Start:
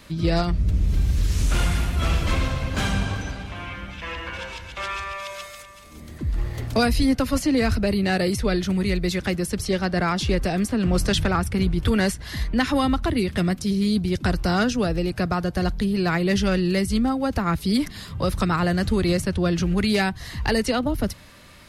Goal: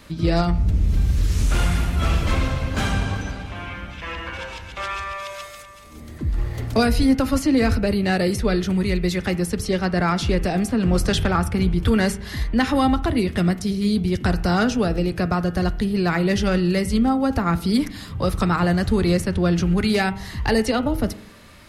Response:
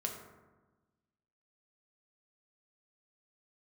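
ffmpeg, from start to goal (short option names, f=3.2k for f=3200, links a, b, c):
-filter_complex "[0:a]bandreject=f=162.1:t=h:w=4,bandreject=f=324.2:t=h:w=4,bandreject=f=486.3:t=h:w=4,bandreject=f=648.4:t=h:w=4,bandreject=f=810.5:t=h:w=4,bandreject=f=972.6:t=h:w=4,bandreject=f=1.1347k:t=h:w=4,bandreject=f=1.2968k:t=h:w=4,bandreject=f=1.4589k:t=h:w=4,bandreject=f=1.621k:t=h:w=4,bandreject=f=1.7831k:t=h:w=4,bandreject=f=1.9452k:t=h:w=4,bandreject=f=2.1073k:t=h:w=4,bandreject=f=2.2694k:t=h:w=4,bandreject=f=2.4315k:t=h:w=4,bandreject=f=2.5936k:t=h:w=4,bandreject=f=2.7557k:t=h:w=4,bandreject=f=2.9178k:t=h:w=4,bandreject=f=3.0799k:t=h:w=4,bandreject=f=3.242k:t=h:w=4,bandreject=f=3.4041k:t=h:w=4,asplit=2[a][b];[1:a]atrim=start_sample=2205,asetrate=88200,aresample=44100,lowpass=2.6k[c];[b][c]afir=irnorm=-1:irlink=0,volume=-4.5dB[d];[a][d]amix=inputs=2:normalize=0"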